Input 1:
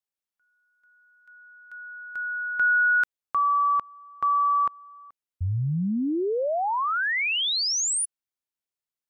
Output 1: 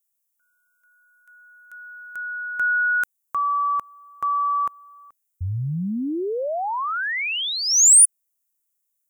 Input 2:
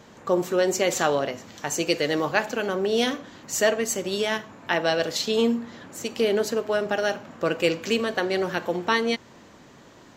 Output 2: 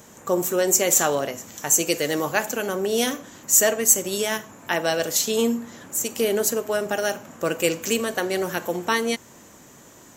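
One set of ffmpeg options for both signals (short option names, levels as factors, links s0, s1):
-af "aexciter=amount=4.5:drive=7.8:freq=6300"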